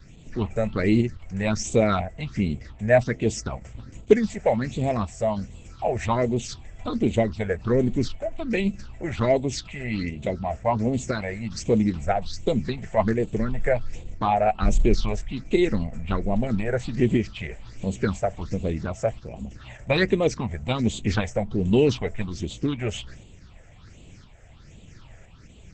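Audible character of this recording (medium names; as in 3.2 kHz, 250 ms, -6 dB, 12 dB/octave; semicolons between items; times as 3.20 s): tremolo saw up 0.99 Hz, depth 35%; phasing stages 6, 1.3 Hz, lowest notch 280–1500 Hz; Opus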